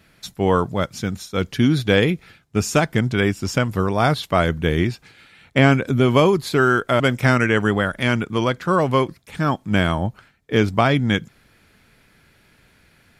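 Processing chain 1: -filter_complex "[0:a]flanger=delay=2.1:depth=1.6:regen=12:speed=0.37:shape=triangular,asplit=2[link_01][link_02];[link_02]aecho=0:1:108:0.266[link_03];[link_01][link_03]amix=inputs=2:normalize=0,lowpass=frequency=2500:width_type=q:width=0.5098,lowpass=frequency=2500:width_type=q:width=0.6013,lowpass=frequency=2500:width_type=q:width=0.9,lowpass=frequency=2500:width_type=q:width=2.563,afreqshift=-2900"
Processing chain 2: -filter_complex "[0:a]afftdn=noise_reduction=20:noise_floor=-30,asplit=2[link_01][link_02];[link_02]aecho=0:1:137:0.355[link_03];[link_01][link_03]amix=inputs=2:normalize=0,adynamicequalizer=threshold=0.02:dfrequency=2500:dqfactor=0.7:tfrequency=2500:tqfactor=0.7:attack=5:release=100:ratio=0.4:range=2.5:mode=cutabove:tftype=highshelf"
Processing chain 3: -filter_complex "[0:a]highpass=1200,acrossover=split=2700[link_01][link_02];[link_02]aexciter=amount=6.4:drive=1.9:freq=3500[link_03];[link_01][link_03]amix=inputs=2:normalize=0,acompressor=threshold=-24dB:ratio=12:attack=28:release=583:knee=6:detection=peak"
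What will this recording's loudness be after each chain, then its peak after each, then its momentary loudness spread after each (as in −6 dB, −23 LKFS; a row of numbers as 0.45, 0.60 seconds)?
−20.5, −19.5, −28.0 LKFS; −5.5, −1.0, −6.5 dBFS; 9, 9, 22 LU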